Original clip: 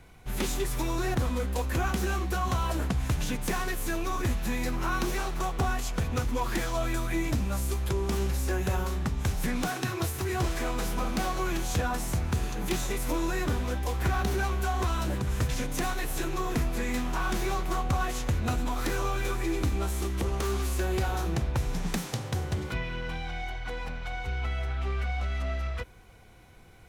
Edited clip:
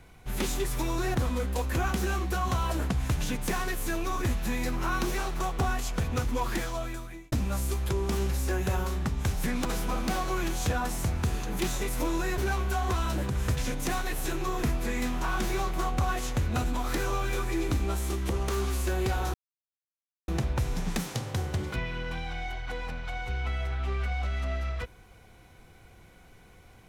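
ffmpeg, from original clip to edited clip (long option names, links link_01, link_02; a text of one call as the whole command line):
ffmpeg -i in.wav -filter_complex "[0:a]asplit=5[link_01][link_02][link_03][link_04][link_05];[link_01]atrim=end=7.32,asetpts=PTS-STARTPTS,afade=type=out:start_time=6.47:duration=0.85[link_06];[link_02]atrim=start=7.32:end=9.652,asetpts=PTS-STARTPTS,afade=type=in:duration=0.004:curve=hsin[link_07];[link_03]atrim=start=10.738:end=13.472[link_08];[link_04]atrim=start=14.298:end=21.26,asetpts=PTS-STARTPTS,afade=type=out:start_time=6.958:duration=0.004:curve=hsin,apad=pad_dur=0.94[link_09];[link_05]atrim=start=21.26,asetpts=PTS-STARTPTS,afade=type=in:duration=0.004:curve=hsin[link_10];[link_06][link_07]concat=n=2:v=0:a=1[link_11];[link_11][link_08]acrossfade=duration=0.004:curve1=hsin:curve2=hsin[link_12];[link_09][link_10]concat=n=2:v=0:a=1[link_13];[link_12][link_13]acrossfade=duration=0.004:curve1=hsin:curve2=hsin" out.wav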